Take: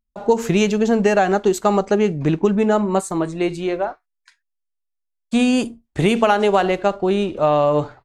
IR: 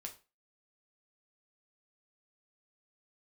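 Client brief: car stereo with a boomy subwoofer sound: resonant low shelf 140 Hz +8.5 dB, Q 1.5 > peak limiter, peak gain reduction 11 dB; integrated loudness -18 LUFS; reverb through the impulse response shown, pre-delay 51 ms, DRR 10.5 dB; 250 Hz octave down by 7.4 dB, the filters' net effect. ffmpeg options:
-filter_complex "[0:a]equalizer=f=250:t=o:g=-8,asplit=2[s0][s1];[1:a]atrim=start_sample=2205,adelay=51[s2];[s1][s2]afir=irnorm=-1:irlink=0,volume=0.473[s3];[s0][s3]amix=inputs=2:normalize=0,lowshelf=f=140:t=q:w=1.5:g=8.5,volume=2.24,alimiter=limit=0.398:level=0:latency=1"

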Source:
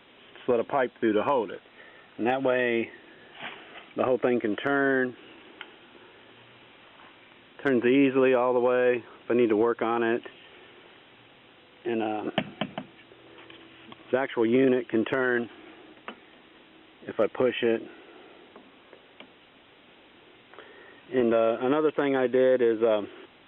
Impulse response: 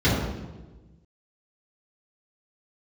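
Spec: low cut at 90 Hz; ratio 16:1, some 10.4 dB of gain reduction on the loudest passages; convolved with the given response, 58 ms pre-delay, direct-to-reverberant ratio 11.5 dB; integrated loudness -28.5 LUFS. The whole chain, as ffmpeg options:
-filter_complex "[0:a]highpass=90,acompressor=threshold=0.0398:ratio=16,asplit=2[s0][s1];[1:a]atrim=start_sample=2205,adelay=58[s2];[s1][s2]afir=irnorm=-1:irlink=0,volume=0.0335[s3];[s0][s3]amix=inputs=2:normalize=0,volume=1.88"

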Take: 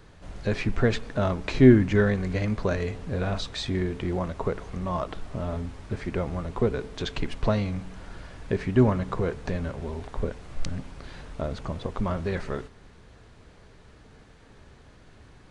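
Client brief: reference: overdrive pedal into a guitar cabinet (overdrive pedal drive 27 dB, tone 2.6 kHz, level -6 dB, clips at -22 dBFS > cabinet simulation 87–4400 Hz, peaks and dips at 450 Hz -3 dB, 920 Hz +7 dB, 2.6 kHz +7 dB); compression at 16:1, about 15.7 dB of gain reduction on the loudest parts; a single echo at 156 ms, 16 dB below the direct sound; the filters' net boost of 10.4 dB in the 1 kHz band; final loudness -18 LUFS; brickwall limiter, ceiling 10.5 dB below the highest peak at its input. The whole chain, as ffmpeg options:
-filter_complex "[0:a]equalizer=f=1000:t=o:g=8,acompressor=threshold=0.0631:ratio=16,alimiter=limit=0.0668:level=0:latency=1,aecho=1:1:156:0.158,asplit=2[s0][s1];[s1]highpass=f=720:p=1,volume=22.4,asoftclip=type=tanh:threshold=0.0794[s2];[s0][s2]amix=inputs=2:normalize=0,lowpass=f=2600:p=1,volume=0.501,highpass=87,equalizer=f=450:t=q:w=4:g=-3,equalizer=f=920:t=q:w=4:g=7,equalizer=f=2600:t=q:w=4:g=7,lowpass=f=4400:w=0.5412,lowpass=f=4400:w=1.3066,volume=3.35"

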